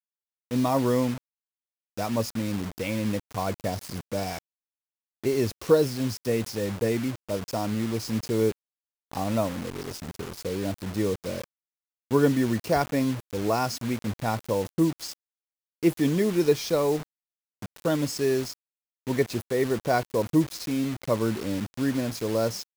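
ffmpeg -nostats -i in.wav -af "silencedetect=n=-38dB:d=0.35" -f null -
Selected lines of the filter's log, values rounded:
silence_start: 0.00
silence_end: 0.51 | silence_duration: 0.51
silence_start: 1.18
silence_end: 1.97 | silence_duration: 0.80
silence_start: 4.39
silence_end: 5.24 | silence_duration: 0.85
silence_start: 8.52
silence_end: 9.12 | silence_duration: 0.59
silence_start: 11.44
silence_end: 12.11 | silence_duration: 0.67
silence_start: 15.13
silence_end: 15.83 | silence_duration: 0.69
silence_start: 17.03
silence_end: 17.62 | silence_duration: 0.59
silence_start: 18.54
silence_end: 19.07 | silence_duration: 0.53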